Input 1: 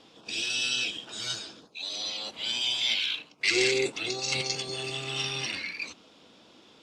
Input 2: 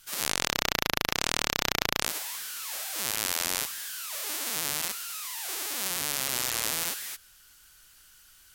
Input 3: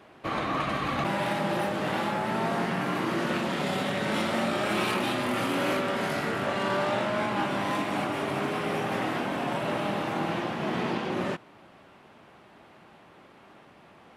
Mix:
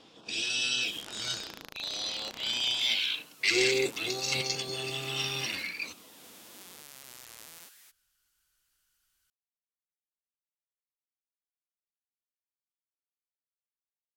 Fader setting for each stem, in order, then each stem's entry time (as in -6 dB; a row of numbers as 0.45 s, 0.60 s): -1.0 dB, -19.5 dB, mute; 0.00 s, 0.75 s, mute